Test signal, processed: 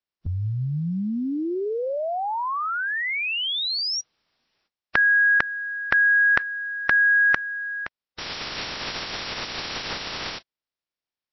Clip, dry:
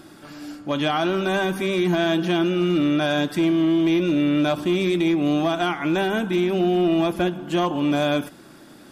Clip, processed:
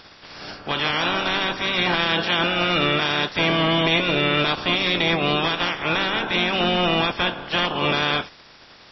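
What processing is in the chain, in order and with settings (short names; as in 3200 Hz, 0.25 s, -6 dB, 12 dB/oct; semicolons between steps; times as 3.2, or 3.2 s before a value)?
spectral limiter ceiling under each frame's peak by 25 dB; MP3 24 kbps 16000 Hz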